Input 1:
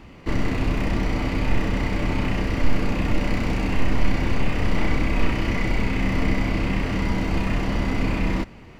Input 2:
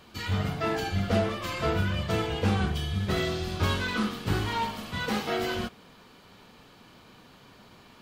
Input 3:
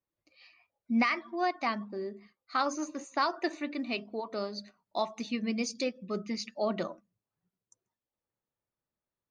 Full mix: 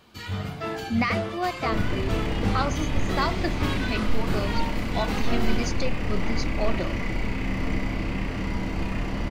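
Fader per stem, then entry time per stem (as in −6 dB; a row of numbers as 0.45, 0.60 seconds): −5.0, −2.5, +2.0 decibels; 1.45, 0.00, 0.00 seconds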